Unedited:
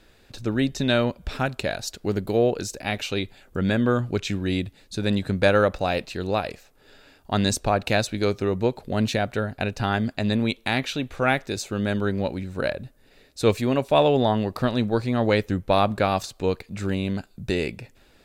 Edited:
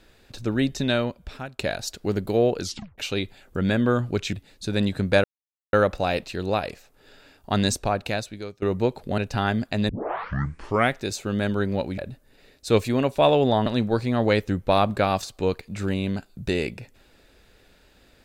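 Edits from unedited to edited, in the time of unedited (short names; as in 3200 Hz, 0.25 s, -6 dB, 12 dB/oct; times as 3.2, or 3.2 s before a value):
0.73–1.59 fade out, to -16 dB
2.62 tape stop 0.36 s
4.33–4.63 cut
5.54 insert silence 0.49 s
7.47–8.43 fade out, to -22.5 dB
8.99–9.64 cut
10.35 tape start 1.04 s
12.44–12.71 cut
14.39–14.67 cut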